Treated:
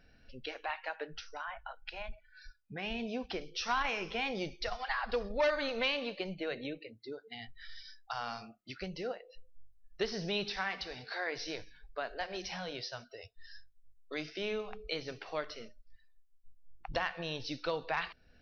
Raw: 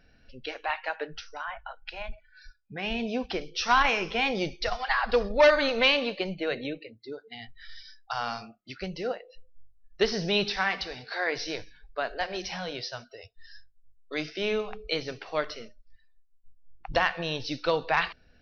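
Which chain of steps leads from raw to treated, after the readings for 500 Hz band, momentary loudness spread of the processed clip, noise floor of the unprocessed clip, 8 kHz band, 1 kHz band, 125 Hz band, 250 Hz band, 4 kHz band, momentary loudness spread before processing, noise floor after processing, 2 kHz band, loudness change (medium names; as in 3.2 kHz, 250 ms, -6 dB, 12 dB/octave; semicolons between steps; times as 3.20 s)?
-9.0 dB, 16 LU, -62 dBFS, no reading, -9.0 dB, -7.0 dB, -7.5 dB, -8.5 dB, 19 LU, -64 dBFS, -9.0 dB, -9.5 dB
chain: compression 1.5:1, threshold -40 dBFS, peak gain reduction 8.5 dB; trim -2.5 dB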